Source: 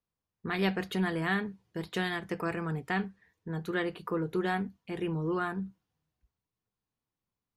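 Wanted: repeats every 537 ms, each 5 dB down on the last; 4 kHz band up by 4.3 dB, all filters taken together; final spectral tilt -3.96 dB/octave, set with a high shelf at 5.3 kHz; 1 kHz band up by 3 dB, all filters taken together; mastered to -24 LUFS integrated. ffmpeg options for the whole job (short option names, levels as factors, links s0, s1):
-af "equalizer=f=1000:t=o:g=4,equalizer=f=4000:t=o:g=8,highshelf=f=5300:g=-7,aecho=1:1:537|1074|1611|2148|2685|3222|3759:0.562|0.315|0.176|0.0988|0.0553|0.031|0.0173,volume=2.24"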